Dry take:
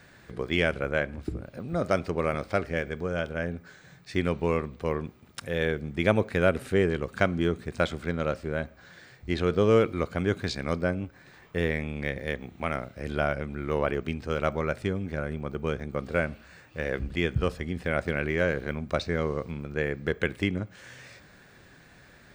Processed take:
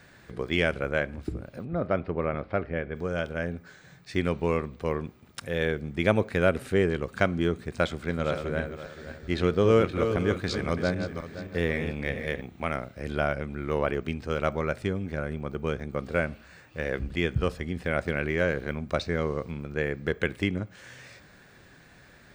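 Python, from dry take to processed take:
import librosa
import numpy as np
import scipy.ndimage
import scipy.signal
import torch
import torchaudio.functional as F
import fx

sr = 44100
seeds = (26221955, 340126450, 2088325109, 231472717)

y = fx.air_absorb(x, sr, metres=410.0, at=(1.64, 2.94), fade=0.02)
y = fx.reverse_delay_fb(y, sr, ms=261, feedback_pct=51, wet_db=-7.5, at=(7.82, 12.41))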